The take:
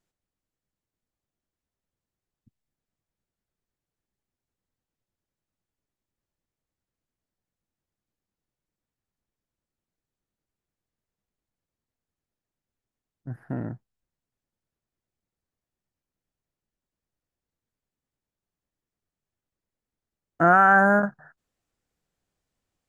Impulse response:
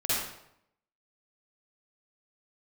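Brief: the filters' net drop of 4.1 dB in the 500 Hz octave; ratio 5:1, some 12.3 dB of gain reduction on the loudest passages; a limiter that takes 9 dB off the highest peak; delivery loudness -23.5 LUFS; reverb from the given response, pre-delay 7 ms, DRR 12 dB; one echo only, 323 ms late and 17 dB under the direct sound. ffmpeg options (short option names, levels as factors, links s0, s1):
-filter_complex "[0:a]equalizer=f=500:t=o:g=-6,acompressor=threshold=0.0398:ratio=5,alimiter=level_in=1.19:limit=0.0631:level=0:latency=1,volume=0.841,aecho=1:1:323:0.141,asplit=2[s0][s1];[1:a]atrim=start_sample=2205,adelay=7[s2];[s1][s2]afir=irnorm=-1:irlink=0,volume=0.0841[s3];[s0][s3]amix=inputs=2:normalize=0,volume=4.47"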